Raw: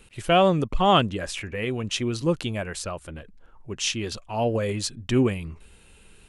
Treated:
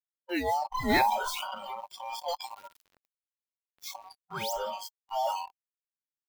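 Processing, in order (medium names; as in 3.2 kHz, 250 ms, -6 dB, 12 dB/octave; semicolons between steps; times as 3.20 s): every band turned upside down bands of 1 kHz; 0.90–1.55 s: waveshaping leveller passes 2; 4.28–4.53 s: painted sound rise 500–8300 Hz -26 dBFS; transient shaper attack -3 dB, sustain +9 dB; thinning echo 704 ms, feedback 55%, high-pass 240 Hz, level -22 dB; on a send at -15 dB: reverberation RT60 1.9 s, pre-delay 4 ms; on the sum: bit crusher 4-bit; peaking EQ 8.2 kHz -7 dB 1.1 oct; spectral noise reduction 24 dB; 2.28–2.85 s: treble shelf 2.5 kHz +11 dB; trim -9 dB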